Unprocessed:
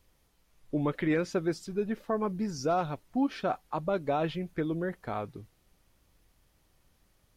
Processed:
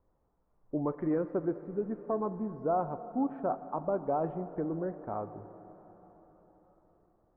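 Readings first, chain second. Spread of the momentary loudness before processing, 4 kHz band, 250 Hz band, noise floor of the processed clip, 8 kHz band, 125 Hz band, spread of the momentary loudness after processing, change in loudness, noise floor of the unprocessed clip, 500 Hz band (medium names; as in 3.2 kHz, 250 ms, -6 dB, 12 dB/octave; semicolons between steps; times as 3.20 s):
7 LU, under -35 dB, -2.5 dB, -73 dBFS, under -30 dB, -4.5 dB, 8 LU, -2.0 dB, -69 dBFS, -1.0 dB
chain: low-pass 1.1 kHz 24 dB/octave; bass shelf 240 Hz -7 dB; plate-style reverb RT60 4.7 s, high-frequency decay 0.85×, DRR 11 dB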